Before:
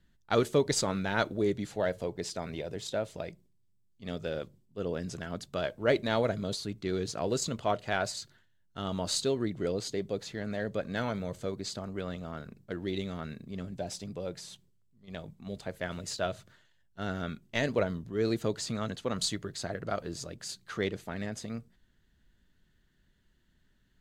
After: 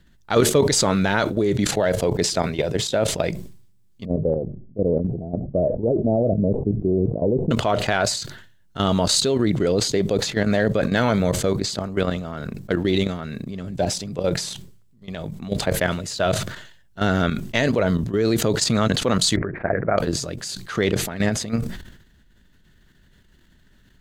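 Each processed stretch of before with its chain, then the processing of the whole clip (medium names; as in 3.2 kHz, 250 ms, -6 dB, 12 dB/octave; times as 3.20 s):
4.05–7.51 s: steep low-pass 730 Hz 48 dB/octave + Shepard-style phaser falling 1.3 Hz
19.36–19.98 s: rippled Chebyshev low-pass 2.4 kHz, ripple 3 dB + hum notches 60/120/180/240/300/360 Hz
whole clip: level held to a coarse grid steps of 12 dB; loudness maximiser +22.5 dB; decay stretcher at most 69 dB/s; trim -5.5 dB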